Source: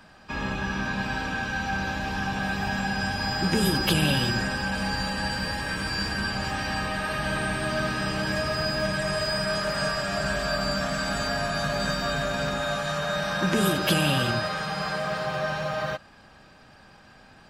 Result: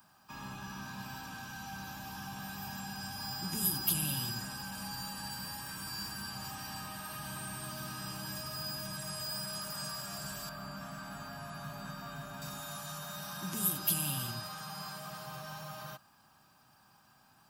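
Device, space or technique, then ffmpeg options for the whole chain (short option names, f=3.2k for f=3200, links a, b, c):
one-band saturation: -filter_complex "[0:a]acrossover=split=310|2600[a][b][c];[b]asoftclip=type=tanh:threshold=-31dB[d];[a][d][c]amix=inputs=3:normalize=0,aemphasis=mode=production:type=riaa,asettb=1/sr,asplit=3[e][f][g];[e]atrim=end=10.494[h];[f]atrim=start=10.49:end=12.42,asetpts=PTS-STARTPTS,afade=t=in:d=0.004:c=qsin,afade=t=out:st=1.926:d=0.004:c=qsin,acrossover=split=2900[i][j];[j]acompressor=threshold=-41dB:ratio=4:attack=1:release=60[k];[i][k]amix=inputs=2:normalize=0[l];[g]atrim=start=12.416[m];[h][l]acrossfade=d=0.004:c1=hsin:c2=qsin[n];[n][m]acrossfade=d=0.004:c1=qsin:c2=hsin,equalizer=f=125:t=o:w=1:g=8,equalizer=f=500:t=o:w=1:g=-12,equalizer=f=1k:t=o:w=1:g=5,equalizer=f=2k:t=o:w=1:g=-12,equalizer=f=4k:t=o:w=1:g=-8,equalizer=f=8k:t=o:w=1:g=-7,volume=-7.5dB"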